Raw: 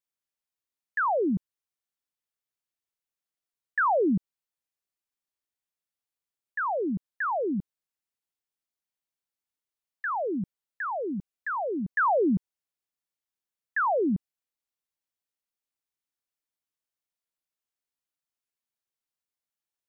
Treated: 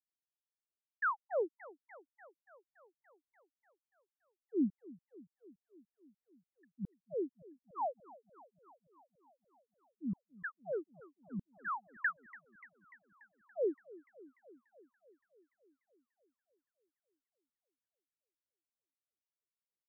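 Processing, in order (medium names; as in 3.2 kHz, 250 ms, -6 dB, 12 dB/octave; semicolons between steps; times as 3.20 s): level-controlled noise filter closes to 540 Hz, open at -25.5 dBFS; granulator 200 ms, grains 3.1 per s, spray 560 ms; modulated delay 289 ms, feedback 70%, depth 183 cents, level -20.5 dB; trim -5 dB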